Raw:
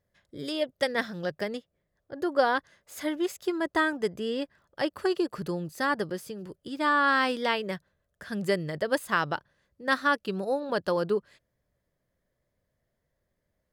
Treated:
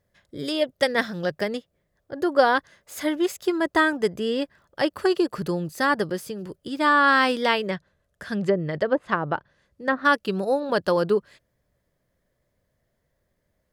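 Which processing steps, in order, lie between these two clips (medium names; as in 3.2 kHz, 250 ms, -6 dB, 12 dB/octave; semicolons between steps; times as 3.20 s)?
7.67–10.05 s: low-pass that closes with the level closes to 730 Hz, closed at -21 dBFS; trim +5.5 dB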